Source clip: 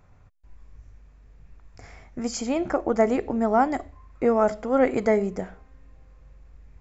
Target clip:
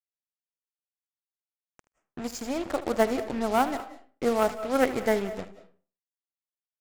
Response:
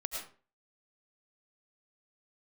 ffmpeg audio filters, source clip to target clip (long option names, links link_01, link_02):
-filter_complex "[0:a]acrusher=bits=4:mix=0:aa=0.5,aeval=exprs='0.422*(cos(1*acos(clip(val(0)/0.422,-1,1)))-cos(1*PI/2))+0.0266*(cos(2*acos(clip(val(0)/0.422,-1,1)))-cos(2*PI/2))+0.075*(cos(3*acos(clip(val(0)/0.422,-1,1)))-cos(3*PI/2))+0.00596*(cos(8*acos(clip(val(0)/0.422,-1,1)))-cos(8*PI/2))':channel_layout=same,asplit=2[link_01][link_02];[1:a]atrim=start_sample=2205,adelay=77[link_03];[link_02][link_03]afir=irnorm=-1:irlink=0,volume=-13.5dB[link_04];[link_01][link_04]amix=inputs=2:normalize=0"